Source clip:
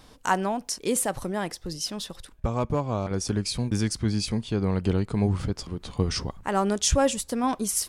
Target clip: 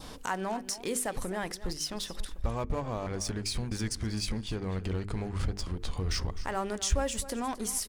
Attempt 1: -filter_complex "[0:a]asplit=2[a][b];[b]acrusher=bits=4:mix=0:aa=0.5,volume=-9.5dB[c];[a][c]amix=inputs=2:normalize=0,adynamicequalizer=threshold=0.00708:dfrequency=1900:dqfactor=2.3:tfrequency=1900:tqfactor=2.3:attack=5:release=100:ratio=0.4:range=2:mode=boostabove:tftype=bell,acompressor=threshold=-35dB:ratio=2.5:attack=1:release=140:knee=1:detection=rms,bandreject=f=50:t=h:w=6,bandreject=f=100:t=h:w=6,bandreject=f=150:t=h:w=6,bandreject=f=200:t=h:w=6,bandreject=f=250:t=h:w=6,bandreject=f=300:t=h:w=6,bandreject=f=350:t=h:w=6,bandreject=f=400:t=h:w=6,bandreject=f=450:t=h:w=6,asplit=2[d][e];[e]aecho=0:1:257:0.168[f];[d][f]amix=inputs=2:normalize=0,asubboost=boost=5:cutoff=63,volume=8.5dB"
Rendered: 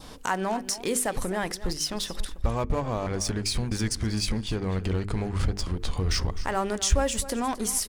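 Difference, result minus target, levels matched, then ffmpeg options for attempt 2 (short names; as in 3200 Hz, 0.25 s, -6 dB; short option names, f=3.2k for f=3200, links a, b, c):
compressor: peak gain reduction -5.5 dB
-filter_complex "[0:a]asplit=2[a][b];[b]acrusher=bits=4:mix=0:aa=0.5,volume=-9.5dB[c];[a][c]amix=inputs=2:normalize=0,adynamicequalizer=threshold=0.00708:dfrequency=1900:dqfactor=2.3:tfrequency=1900:tqfactor=2.3:attack=5:release=100:ratio=0.4:range=2:mode=boostabove:tftype=bell,acompressor=threshold=-44dB:ratio=2.5:attack=1:release=140:knee=1:detection=rms,bandreject=f=50:t=h:w=6,bandreject=f=100:t=h:w=6,bandreject=f=150:t=h:w=6,bandreject=f=200:t=h:w=6,bandreject=f=250:t=h:w=6,bandreject=f=300:t=h:w=6,bandreject=f=350:t=h:w=6,bandreject=f=400:t=h:w=6,bandreject=f=450:t=h:w=6,asplit=2[d][e];[e]aecho=0:1:257:0.168[f];[d][f]amix=inputs=2:normalize=0,asubboost=boost=5:cutoff=63,volume=8.5dB"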